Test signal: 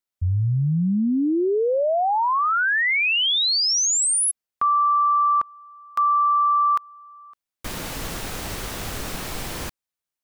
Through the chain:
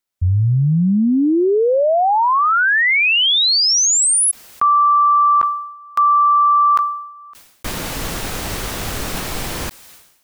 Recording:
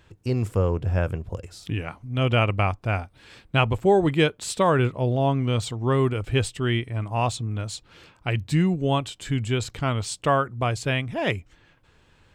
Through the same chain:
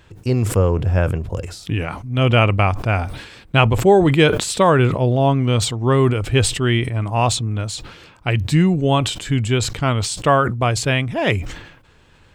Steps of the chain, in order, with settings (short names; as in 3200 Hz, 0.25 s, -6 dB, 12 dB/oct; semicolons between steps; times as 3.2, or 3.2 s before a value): sustainer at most 70 dB/s; gain +6 dB